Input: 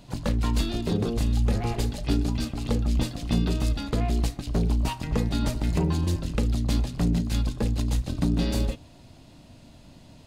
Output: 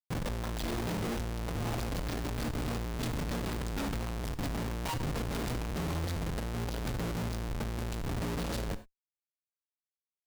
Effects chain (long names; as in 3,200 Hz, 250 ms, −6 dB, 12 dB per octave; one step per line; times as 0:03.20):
high-shelf EQ 4,400 Hz +3.5 dB
comparator with hysteresis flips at −34.5 dBFS
reverb whose tail is shaped and stops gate 120 ms flat, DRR 11.5 dB
level −8 dB